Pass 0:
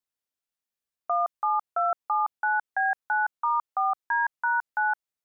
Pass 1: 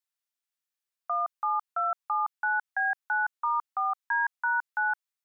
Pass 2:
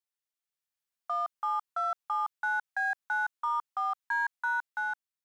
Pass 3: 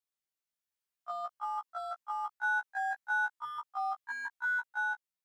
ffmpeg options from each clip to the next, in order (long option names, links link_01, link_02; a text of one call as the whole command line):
ffmpeg -i in.wav -af "highpass=980" out.wav
ffmpeg -i in.wav -filter_complex "[0:a]dynaudnorm=framelen=110:gausssize=11:maxgain=4dB,asplit=2[link_01][link_02];[link_02]asoftclip=type=hard:threshold=-31.5dB,volume=-9.5dB[link_03];[link_01][link_03]amix=inputs=2:normalize=0,volume=-7.5dB" out.wav
ffmpeg -i in.wav -af "afftfilt=real='re*1.73*eq(mod(b,3),0)':imag='im*1.73*eq(mod(b,3),0)':win_size=2048:overlap=0.75" out.wav